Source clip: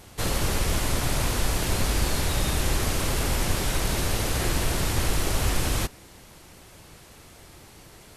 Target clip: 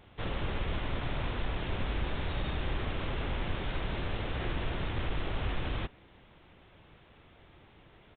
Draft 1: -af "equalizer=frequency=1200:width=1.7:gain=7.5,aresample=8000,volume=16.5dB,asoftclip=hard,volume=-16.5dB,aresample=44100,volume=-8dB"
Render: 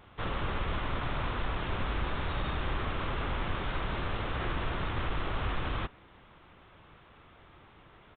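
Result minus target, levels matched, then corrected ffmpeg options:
1,000 Hz band +3.5 dB
-af "aresample=8000,volume=16.5dB,asoftclip=hard,volume=-16.5dB,aresample=44100,volume=-8dB"

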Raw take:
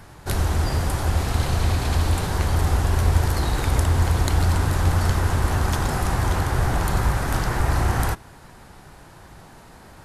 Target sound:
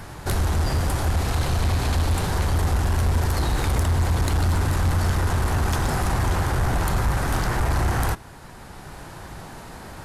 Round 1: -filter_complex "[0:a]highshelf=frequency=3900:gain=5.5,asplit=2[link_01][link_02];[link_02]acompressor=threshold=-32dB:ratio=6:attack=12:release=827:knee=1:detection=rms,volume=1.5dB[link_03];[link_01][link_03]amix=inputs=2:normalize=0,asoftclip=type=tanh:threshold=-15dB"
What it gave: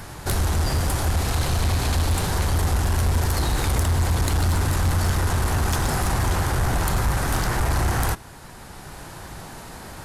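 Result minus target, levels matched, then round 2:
8,000 Hz band +4.0 dB
-filter_complex "[0:a]asplit=2[link_01][link_02];[link_02]acompressor=threshold=-32dB:ratio=6:attack=12:release=827:knee=1:detection=rms,volume=1.5dB[link_03];[link_01][link_03]amix=inputs=2:normalize=0,asoftclip=type=tanh:threshold=-15dB"

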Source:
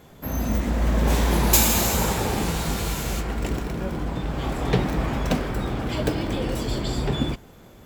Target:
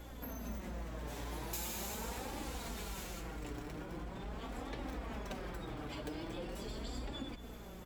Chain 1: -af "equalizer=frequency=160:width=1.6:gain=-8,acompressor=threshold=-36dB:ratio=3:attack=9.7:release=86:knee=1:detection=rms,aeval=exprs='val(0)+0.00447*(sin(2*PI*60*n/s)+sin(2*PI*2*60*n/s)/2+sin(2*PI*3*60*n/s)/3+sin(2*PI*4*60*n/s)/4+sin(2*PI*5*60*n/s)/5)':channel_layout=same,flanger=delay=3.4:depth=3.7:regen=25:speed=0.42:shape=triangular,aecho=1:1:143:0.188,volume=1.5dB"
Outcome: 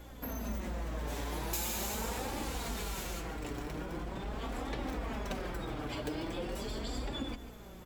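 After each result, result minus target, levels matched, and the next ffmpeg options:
echo 84 ms early; downward compressor: peak gain reduction −5.5 dB
-af "equalizer=frequency=160:width=1.6:gain=-8,acompressor=threshold=-36dB:ratio=3:attack=9.7:release=86:knee=1:detection=rms,aeval=exprs='val(0)+0.00447*(sin(2*PI*60*n/s)+sin(2*PI*2*60*n/s)/2+sin(2*PI*3*60*n/s)/3+sin(2*PI*4*60*n/s)/4+sin(2*PI*5*60*n/s)/5)':channel_layout=same,flanger=delay=3.4:depth=3.7:regen=25:speed=0.42:shape=triangular,aecho=1:1:227:0.188,volume=1.5dB"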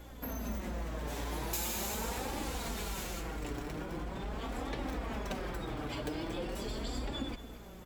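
downward compressor: peak gain reduction −5.5 dB
-af "equalizer=frequency=160:width=1.6:gain=-8,acompressor=threshold=-44dB:ratio=3:attack=9.7:release=86:knee=1:detection=rms,aeval=exprs='val(0)+0.00447*(sin(2*PI*60*n/s)+sin(2*PI*2*60*n/s)/2+sin(2*PI*3*60*n/s)/3+sin(2*PI*4*60*n/s)/4+sin(2*PI*5*60*n/s)/5)':channel_layout=same,flanger=delay=3.4:depth=3.7:regen=25:speed=0.42:shape=triangular,aecho=1:1:227:0.188,volume=1.5dB"

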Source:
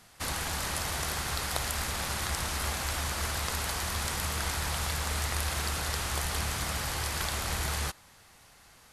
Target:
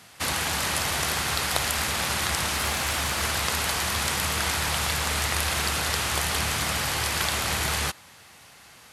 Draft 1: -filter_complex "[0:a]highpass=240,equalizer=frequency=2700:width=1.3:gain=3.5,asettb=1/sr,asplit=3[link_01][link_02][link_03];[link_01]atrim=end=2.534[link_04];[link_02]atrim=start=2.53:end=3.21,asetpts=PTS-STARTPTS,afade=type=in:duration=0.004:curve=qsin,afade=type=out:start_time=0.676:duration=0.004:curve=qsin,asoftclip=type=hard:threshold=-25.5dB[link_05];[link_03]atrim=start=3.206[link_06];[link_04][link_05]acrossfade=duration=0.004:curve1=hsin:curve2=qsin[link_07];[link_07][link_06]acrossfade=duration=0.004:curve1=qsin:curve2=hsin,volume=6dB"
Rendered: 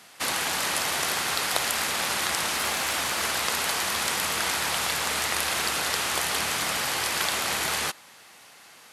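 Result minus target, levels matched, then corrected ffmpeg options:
125 Hz band −11.5 dB
-filter_complex "[0:a]highpass=88,equalizer=frequency=2700:width=1.3:gain=3.5,asettb=1/sr,asplit=3[link_01][link_02][link_03];[link_01]atrim=end=2.534[link_04];[link_02]atrim=start=2.53:end=3.21,asetpts=PTS-STARTPTS,afade=type=in:duration=0.004:curve=qsin,afade=type=out:start_time=0.676:duration=0.004:curve=qsin,asoftclip=type=hard:threshold=-25.5dB[link_05];[link_03]atrim=start=3.206[link_06];[link_04][link_05]acrossfade=duration=0.004:curve1=hsin:curve2=qsin[link_07];[link_07][link_06]acrossfade=duration=0.004:curve1=qsin:curve2=hsin,volume=6dB"

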